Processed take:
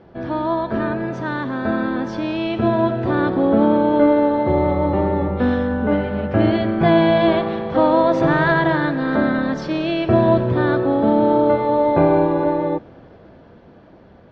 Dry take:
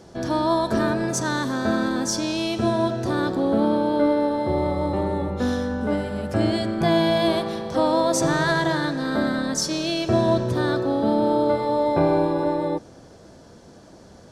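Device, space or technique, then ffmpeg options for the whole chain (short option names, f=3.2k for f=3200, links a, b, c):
action camera in a waterproof case: -af "lowpass=f=2.9k:w=0.5412,lowpass=f=2.9k:w=1.3066,dynaudnorm=f=680:g=7:m=6.5dB" -ar 48000 -c:a aac -b:a 48k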